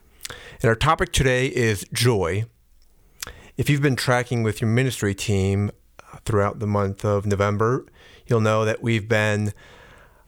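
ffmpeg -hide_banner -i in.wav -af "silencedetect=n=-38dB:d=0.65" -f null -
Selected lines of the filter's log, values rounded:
silence_start: 2.45
silence_end: 3.20 | silence_duration: 0.75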